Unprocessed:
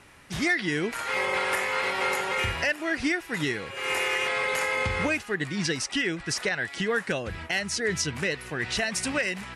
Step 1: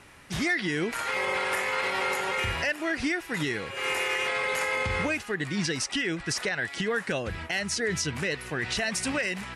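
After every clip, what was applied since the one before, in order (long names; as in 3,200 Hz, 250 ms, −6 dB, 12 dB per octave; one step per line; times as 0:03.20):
brickwall limiter −20 dBFS, peak gain reduction 3.5 dB
level +1 dB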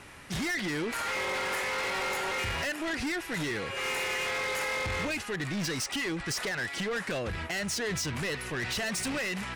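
soft clipping −32 dBFS, distortion −8 dB
level +3 dB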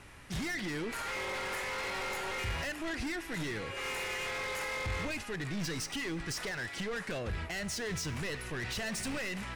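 low-shelf EQ 79 Hz +11 dB
tuned comb filter 55 Hz, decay 1.5 s, harmonics all, mix 50%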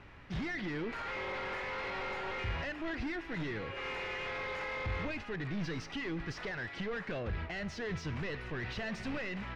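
high-frequency loss of the air 230 metres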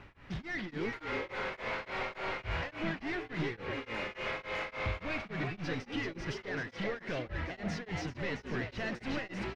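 on a send: echo with shifted repeats 386 ms, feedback 46%, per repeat +110 Hz, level −4.5 dB
on the sum: tremolo along a rectified sine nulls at 3.5 Hz
level +2 dB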